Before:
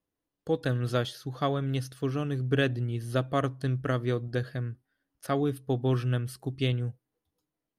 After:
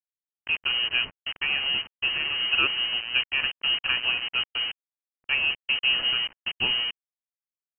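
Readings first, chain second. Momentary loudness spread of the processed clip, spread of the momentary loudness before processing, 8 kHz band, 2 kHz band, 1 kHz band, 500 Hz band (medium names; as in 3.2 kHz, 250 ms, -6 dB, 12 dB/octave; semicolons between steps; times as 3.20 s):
8 LU, 8 LU, under -30 dB, +13.5 dB, -2.5 dB, -15.5 dB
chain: rotary cabinet horn 6.3 Hz; bit crusher 6-bit; frequency inversion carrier 3 kHz; trim +3.5 dB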